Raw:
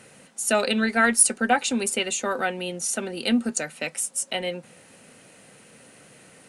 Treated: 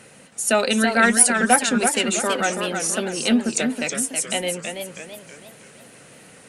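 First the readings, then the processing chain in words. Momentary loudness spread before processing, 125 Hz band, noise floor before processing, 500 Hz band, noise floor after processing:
11 LU, +5.5 dB, -52 dBFS, +4.0 dB, -48 dBFS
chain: warbling echo 0.325 s, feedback 44%, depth 158 cents, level -6 dB; gain +3 dB

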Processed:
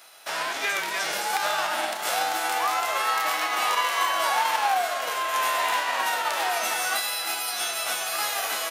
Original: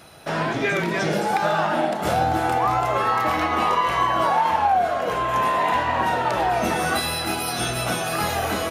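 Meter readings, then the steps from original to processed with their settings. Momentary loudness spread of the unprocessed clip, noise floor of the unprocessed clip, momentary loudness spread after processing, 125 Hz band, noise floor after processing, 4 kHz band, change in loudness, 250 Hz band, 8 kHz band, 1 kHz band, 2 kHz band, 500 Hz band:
4 LU, -27 dBFS, 4 LU, under -25 dB, -32 dBFS, +2.5 dB, -3.0 dB, -18.5 dB, +4.0 dB, -5.0 dB, -0.5 dB, -8.5 dB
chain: spectral whitening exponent 0.6; HPF 700 Hz 12 dB/oct; gain -2.5 dB

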